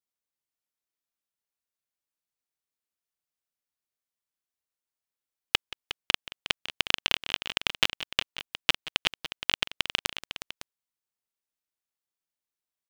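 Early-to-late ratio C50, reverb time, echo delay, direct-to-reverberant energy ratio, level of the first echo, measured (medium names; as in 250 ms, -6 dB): no reverb, no reverb, 177 ms, no reverb, -17.5 dB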